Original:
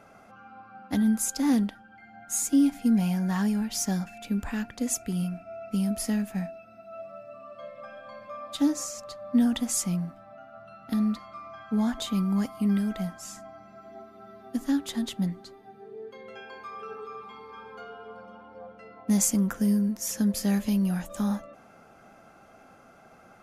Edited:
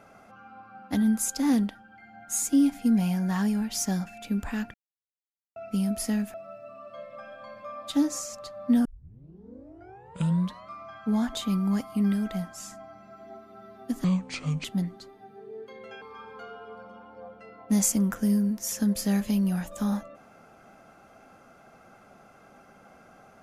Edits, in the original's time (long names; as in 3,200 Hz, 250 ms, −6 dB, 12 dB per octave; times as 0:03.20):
0:04.74–0:05.56: silence
0:06.34–0:06.99: remove
0:09.50: tape start 1.86 s
0:14.69–0:15.09: play speed 66%
0:16.46–0:17.40: remove